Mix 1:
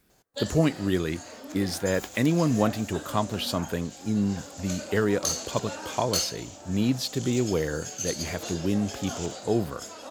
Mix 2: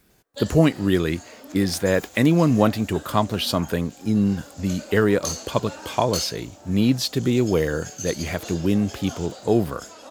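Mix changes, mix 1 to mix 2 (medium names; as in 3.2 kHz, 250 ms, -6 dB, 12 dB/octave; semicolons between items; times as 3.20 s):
speech +8.0 dB; second sound -5.0 dB; reverb: off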